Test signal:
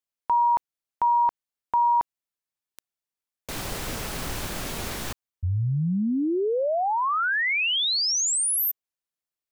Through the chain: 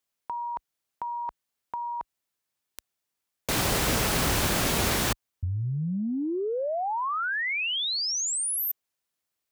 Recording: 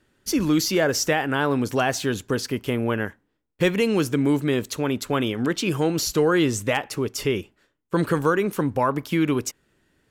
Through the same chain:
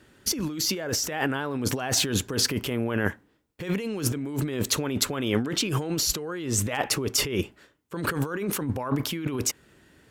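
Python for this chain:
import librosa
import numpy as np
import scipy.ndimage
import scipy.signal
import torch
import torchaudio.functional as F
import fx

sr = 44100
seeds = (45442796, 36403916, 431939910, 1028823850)

y = scipy.signal.sosfilt(scipy.signal.butter(2, 41.0, 'highpass', fs=sr, output='sos'), x)
y = fx.over_compress(y, sr, threshold_db=-30.0, ratio=-1.0)
y = y * librosa.db_to_amplitude(2.0)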